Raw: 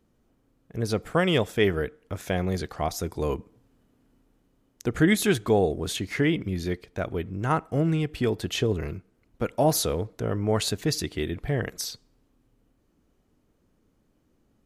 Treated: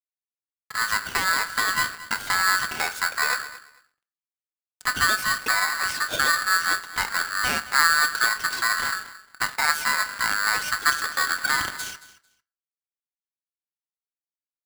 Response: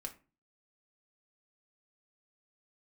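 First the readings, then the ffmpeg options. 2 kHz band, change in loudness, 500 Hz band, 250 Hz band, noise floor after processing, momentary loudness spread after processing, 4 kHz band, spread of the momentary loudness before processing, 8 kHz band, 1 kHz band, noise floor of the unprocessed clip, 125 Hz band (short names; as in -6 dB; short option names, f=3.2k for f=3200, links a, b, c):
+14.0 dB, +4.0 dB, -15.0 dB, -17.0 dB, under -85 dBFS, 9 LU, +7.0 dB, 11 LU, +7.0 dB, +8.5 dB, -69 dBFS, -18.5 dB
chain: -filter_complex "[0:a]bandreject=f=49.51:t=h:w=4,bandreject=f=99.02:t=h:w=4,bandreject=f=148.53:t=h:w=4,asplit=2[a][b];[b]acompressor=threshold=-34dB:ratio=6,volume=2dB[c];[a][c]amix=inputs=2:normalize=0,alimiter=limit=-14.5dB:level=0:latency=1:release=214,acrossover=split=370[d][e];[e]acompressor=threshold=-28dB:ratio=2.5[f];[d][f]amix=inputs=2:normalize=0,aeval=exprs='(tanh(7.08*val(0)+0.5)-tanh(0.5))/7.08':c=same,flanger=delay=0.9:depth=6.5:regen=-8:speed=0.97:shape=triangular,acrusher=bits=7:mix=0:aa=0.000001,aecho=1:1:223|446:0.141|0.0254,asplit=2[g][h];[1:a]atrim=start_sample=2205,lowpass=3.7k[i];[h][i]afir=irnorm=-1:irlink=0,volume=2dB[j];[g][j]amix=inputs=2:normalize=0,aeval=exprs='val(0)*sgn(sin(2*PI*1500*n/s))':c=same,volume=2dB"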